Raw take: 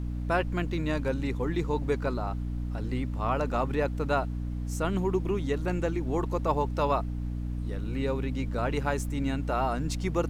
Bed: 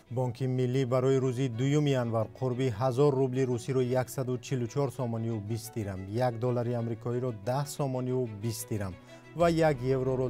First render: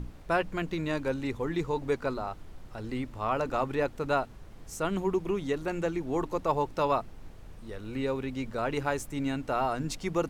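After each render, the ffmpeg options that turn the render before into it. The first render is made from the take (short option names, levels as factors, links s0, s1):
-af "bandreject=f=60:t=h:w=6,bandreject=f=120:t=h:w=6,bandreject=f=180:t=h:w=6,bandreject=f=240:t=h:w=6,bandreject=f=300:t=h:w=6"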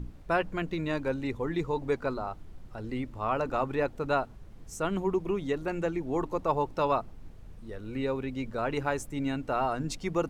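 -af "afftdn=nr=6:nf=-48"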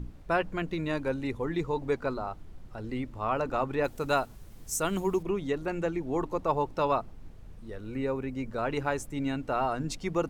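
-filter_complex "[0:a]asettb=1/sr,asplit=3[s0][s1][s2];[s0]atrim=end=0.694[s3];[s1]atrim=start=0.69:end=1.45,asetpts=PTS-STARTPTS,afade=t=in:d=0.004:c=qsin,afade=t=out:st=0.756:d=0.004:c=qsin,equalizer=f=10000:w=6.1:g=6.5[s4];[s2]atrim=start=1.446[s5];[s3][s4]acrossfade=d=0.004:c1=hsin:c2=qsin[s6];[s6][s5]acrossfade=d=0.004:c1=qsin:c2=hsin,asettb=1/sr,asplit=3[s7][s8][s9];[s7]atrim=end=3.844[s10];[s8]atrim=start=3.84:end=5.23,asetpts=PTS-STARTPTS,afade=t=in:d=0.004:c=qsin,afade=t=out:st=1.386:d=0.004:c=qsin,aemphasis=mode=production:type=75kf[s11];[s9]atrim=start=5.226[s12];[s10][s11]acrossfade=d=0.004:c1=hsin:c2=qsin[s13];[s13][s12]acrossfade=d=0.004:c1=qsin:c2=hsin,asettb=1/sr,asplit=3[s14][s15][s16];[s14]atrim=end=7.944[s17];[s15]atrim=start=7.94:end=8.51,asetpts=PTS-STARTPTS,afade=t=in:d=0.004:c=qsin,afade=t=out:st=0.566:d=0.004:c=qsin,equalizer=f=3500:t=o:w=0.66:g=-8.5[s18];[s16]atrim=start=8.506[s19];[s17][s18]acrossfade=d=0.004:c1=hsin:c2=qsin[s20];[s20][s19]acrossfade=d=0.004:c1=qsin:c2=hsin"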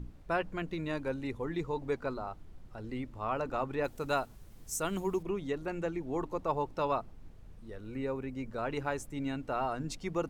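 -af "volume=0.596"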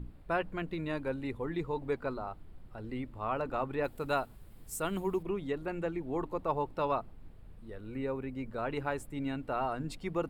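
-af "equalizer=f=6100:w=2.8:g=-13.5"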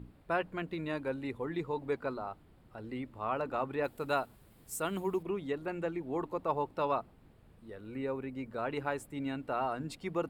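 -af "highpass=f=140:p=1"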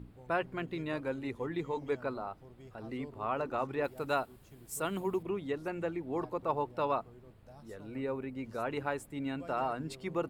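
-filter_complex "[1:a]volume=0.0596[s0];[0:a][s0]amix=inputs=2:normalize=0"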